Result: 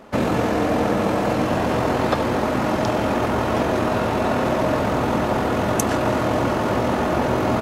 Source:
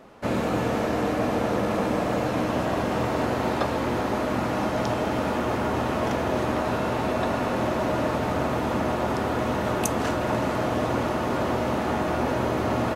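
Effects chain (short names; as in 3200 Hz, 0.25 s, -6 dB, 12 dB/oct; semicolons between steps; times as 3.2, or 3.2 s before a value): tempo 1.7×; gain +5.5 dB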